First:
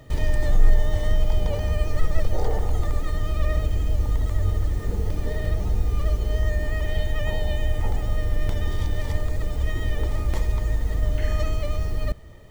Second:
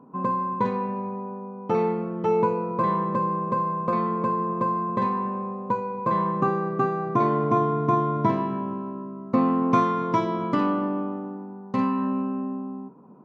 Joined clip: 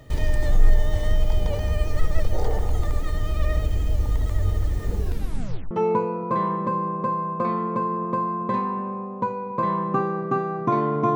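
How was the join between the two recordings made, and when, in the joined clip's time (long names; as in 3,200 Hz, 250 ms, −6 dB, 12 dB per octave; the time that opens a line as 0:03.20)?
first
0:04.97: tape stop 0.74 s
0:05.71: continue with second from 0:02.19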